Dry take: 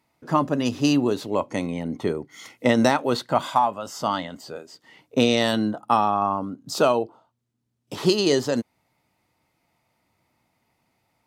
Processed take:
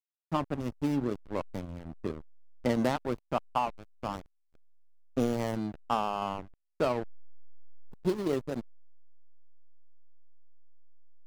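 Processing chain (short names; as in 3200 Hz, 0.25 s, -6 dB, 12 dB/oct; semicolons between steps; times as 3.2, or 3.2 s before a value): median filter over 15 samples; backlash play -19.5 dBFS; gain -7.5 dB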